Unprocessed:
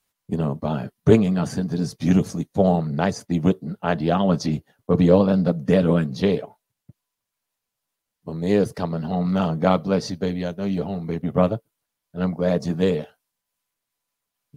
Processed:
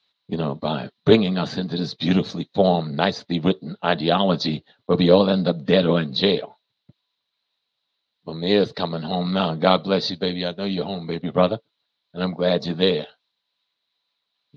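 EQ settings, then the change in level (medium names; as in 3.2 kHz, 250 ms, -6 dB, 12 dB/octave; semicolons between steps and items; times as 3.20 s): high-pass 280 Hz 6 dB/octave; resonant low-pass 3.9 kHz, resonance Q 9; distance through air 92 m; +3.0 dB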